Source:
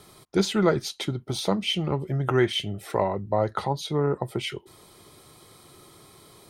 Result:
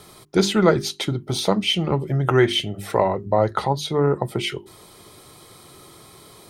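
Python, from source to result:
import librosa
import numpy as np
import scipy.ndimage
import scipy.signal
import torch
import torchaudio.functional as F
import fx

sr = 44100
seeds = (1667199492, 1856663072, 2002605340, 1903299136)

y = fx.hum_notches(x, sr, base_hz=50, count=8)
y = y * librosa.db_to_amplitude(5.5)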